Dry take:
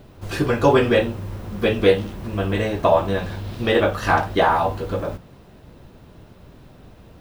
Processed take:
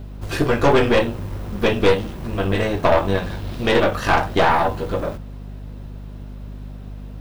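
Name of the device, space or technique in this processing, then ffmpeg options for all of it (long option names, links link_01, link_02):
valve amplifier with mains hum: -af "aeval=exprs='(tanh(5.62*val(0)+0.7)-tanh(0.7))/5.62':channel_layout=same,aeval=exprs='val(0)+0.0126*(sin(2*PI*50*n/s)+sin(2*PI*2*50*n/s)/2+sin(2*PI*3*50*n/s)/3+sin(2*PI*4*50*n/s)/4+sin(2*PI*5*50*n/s)/5)':channel_layout=same,volume=5.5dB"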